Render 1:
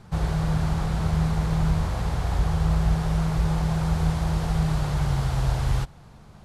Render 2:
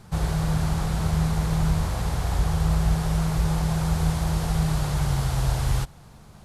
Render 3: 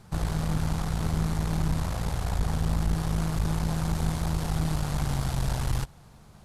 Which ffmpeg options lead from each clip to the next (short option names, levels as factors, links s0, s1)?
-af "highshelf=f=6800:g=11"
-af "aeval=exprs='(tanh(10*val(0)+0.7)-tanh(0.7))/10':c=same"